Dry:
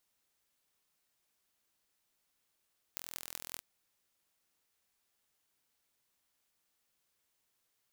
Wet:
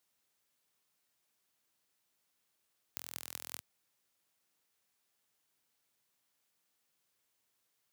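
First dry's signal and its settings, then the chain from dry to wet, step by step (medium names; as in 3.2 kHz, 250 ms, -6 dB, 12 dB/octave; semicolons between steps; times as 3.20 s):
pulse train 41.9 per s, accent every 8, -11 dBFS 0.63 s
high-pass 82 Hz 24 dB/octave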